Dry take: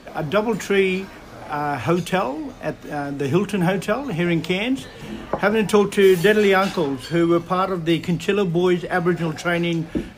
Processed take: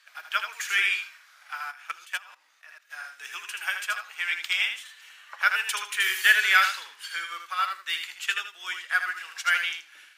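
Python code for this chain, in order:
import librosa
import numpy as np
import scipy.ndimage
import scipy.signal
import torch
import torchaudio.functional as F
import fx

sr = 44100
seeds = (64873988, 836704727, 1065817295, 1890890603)

y = scipy.signal.sosfilt(scipy.signal.cheby1(3, 1.0, 1500.0, 'highpass', fs=sr, output='sos'), x)
y = fx.echo_feedback(y, sr, ms=79, feedback_pct=22, wet_db=-5.0)
y = fx.level_steps(y, sr, step_db=14, at=(1.7, 2.89), fade=0.02)
y = fx.upward_expand(y, sr, threshold_db=-46.0, expansion=1.5)
y = y * 10.0 ** (5.0 / 20.0)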